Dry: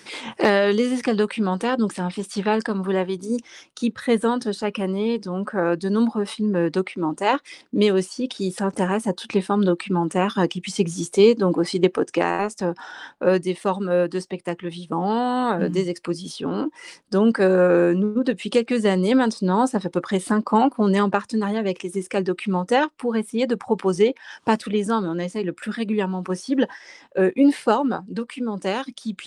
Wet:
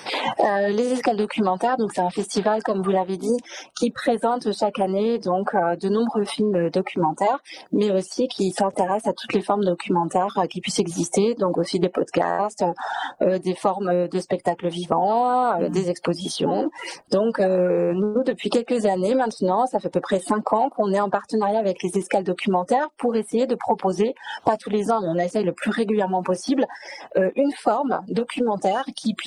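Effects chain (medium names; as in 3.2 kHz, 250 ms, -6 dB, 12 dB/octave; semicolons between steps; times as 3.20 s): coarse spectral quantiser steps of 30 dB; peaking EQ 710 Hz +12.5 dB 0.83 oct; compression 6:1, threshold -25 dBFS, peak gain reduction 18 dB; trim +7 dB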